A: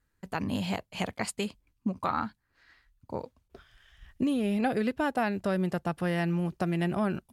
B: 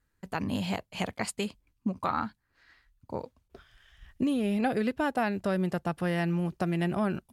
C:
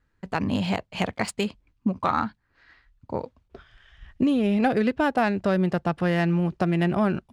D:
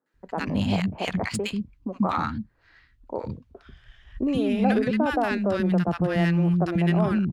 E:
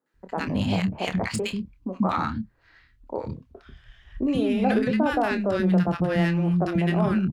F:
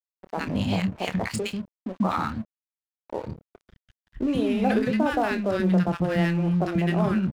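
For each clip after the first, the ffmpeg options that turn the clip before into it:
-af anull
-af "adynamicsmooth=sensitivity=6:basefreq=4.9k,volume=6dB"
-filter_complex "[0:a]lowshelf=f=200:g=6,acrossover=split=270|1100[a][b][c];[c]adelay=60[d];[a]adelay=140[e];[e][b][d]amix=inputs=3:normalize=0"
-filter_complex "[0:a]asplit=2[a][b];[b]adelay=27,volume=-9.5dB[c];[a][c]amix=inputs=2:normalize=0"
-af "aeval=exprs='sgn(val(0))*max(abs(val(0))-0.0075,0)':c=same"

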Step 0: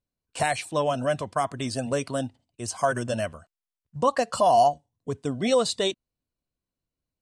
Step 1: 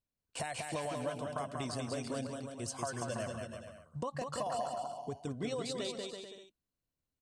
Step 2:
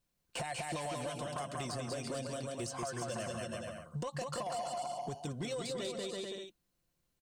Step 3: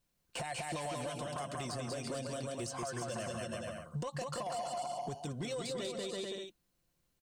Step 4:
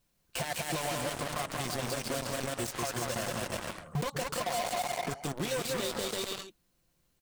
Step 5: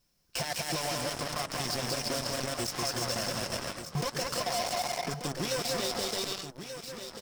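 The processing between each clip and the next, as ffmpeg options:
-filter_complex "[0:a]acompressor=threshold=-31dB:ratio=6,asplit=2[a][b];[b]aecho=0:1:190|332.5|439.4|519.5|579.6:0.631|0.398|0.251|0.158|0.1[c];[a][c]amix=inputs=2:normalize=0,volume=-5.5dB"
-filter_complex "[0:a]aecho=1:1:5.7:0.42,acrossover=split=2500|6800[a][b][c];[a]acompressor=threshold=-45dB:ratio=4[d];[b]acompressor=threshold=-56dB:ratio=4[e];[c]acompressor=threshold=-59dB:ratio=4[f];[d][e][f]amix=inputs=3:normalize=0,asoftclip=type=tanh:threshold=-39dB,volume=8.5dB"
-af "alimiter=level_in=10dB:limit=-24dB:level=0:latency=1:release=195,volume=-10dB,volume=2dB"
-filter_complex "[0:a]aeval=exprs='0.0266*(cos(1*acos(clip(val(0)/0.0266,-1,1)))-cos(1*PI/2))+0.00596*(cos(3*acos(clip(val(0)/0.0266,-1,1)))-cos(3*PI/2))+0.00668*(cos(7*acos(clip(val(0)/0.0266,-1,1)))-cos(7*PI/2))':c=same,asplit=2[a][b];[b]acrusher=bits=5:mix=0:aa=0.000001,volume=-5.5dB[c];[a][c]amix=inputs=2:normalize=0,volume=2dB"
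-af "equalizer=f=5.3k:w=5:g=12.5,aecho=1:1:1184:0.335"

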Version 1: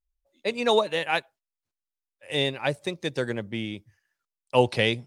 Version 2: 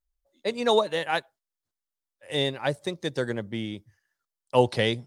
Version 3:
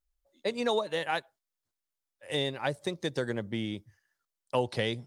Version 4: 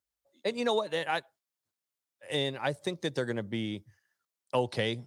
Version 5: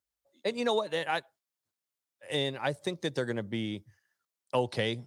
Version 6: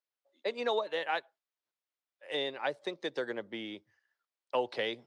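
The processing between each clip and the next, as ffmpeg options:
-af "equalizer=f=2.5k:t=o:w=0.36:g=-8"
-af "acompressor=threshold=-28dB:ratio=2.5"
-af "highpass=f=79:w=0.5412,highpass=f=79:w=1.3066"
-af anull
-filter_complex "[0:a]acrossover=split=290 4900:gain=0.0794 1 0.112[a][b][c];[a][b][c]amix=inputs=3:normalize=0,volume=-1.5dB"

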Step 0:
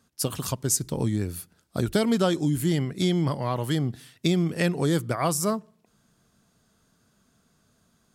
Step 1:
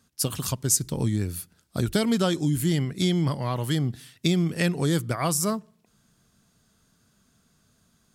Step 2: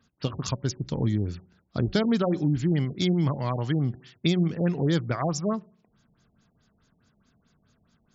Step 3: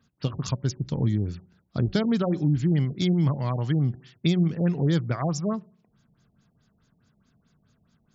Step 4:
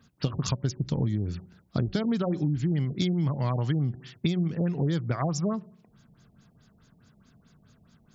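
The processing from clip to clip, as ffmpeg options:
-af "equalizer=f=600:w=0.45:g=-5,volume=2.5dB"
-af "bandreject=f=186.8:t=h:w=4,bandreject=f=373.6:t=h:w=4,bandreject=f=560.4:t=h:w=4,bandreject=f=747.2:t=h:w=4,afftfilt=real='re*lt(b*sr/1024,840*pow(7600/840,0.5+0.5*sin(2*PI*4.7*pts/sr)))':imag='im*lt(b*sr/1024,840*pow(7600/840,0.5+0.5*sin(2*PI*4.7*pts/sr)))':win_size=1024:overlap=0.75"
-af "equalizer=f=140:t=o:w=1.2:g=5,volume=-2dB"
-af "acompressor=threshold=-30dB:ratio=6,volume=6dB"

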